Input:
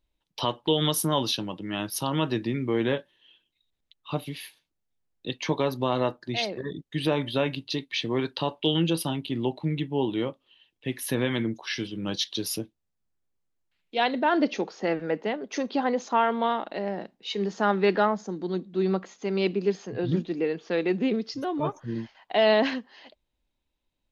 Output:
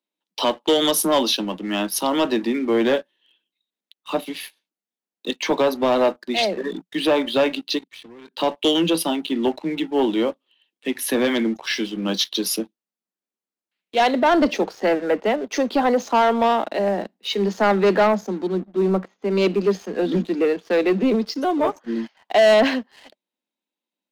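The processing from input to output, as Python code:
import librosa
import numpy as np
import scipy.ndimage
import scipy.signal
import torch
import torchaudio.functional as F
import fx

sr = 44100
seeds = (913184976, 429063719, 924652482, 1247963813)

y = fx.level_steps(x, sr, step_db=23, at=(7.77, 8.37), fade=0.02)
y = fx.spacing_loss(y, sr, db_at_10k=28, at=(18.47, 19.32))
y = scipy.signal.sosfilt(scipy.signal.butter(16, 180.0, 'highpass', fs=sr, output='sos'), y)
y = fx.dynamic_eq(y, sr, hz=630.0, q=2.5, threshold_db=-37.0, ratio=4.0, max_db=5)
y = fx.leveller(y, sr, passes=2)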